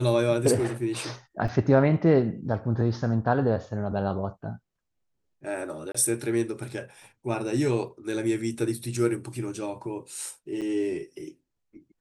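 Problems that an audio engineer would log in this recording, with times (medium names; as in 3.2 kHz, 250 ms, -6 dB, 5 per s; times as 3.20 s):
1.48 s: dropout 3.6 ms
5.92–5.95 s: dropout 25 ms
10.61–10.62 s: dropout 7.6 ms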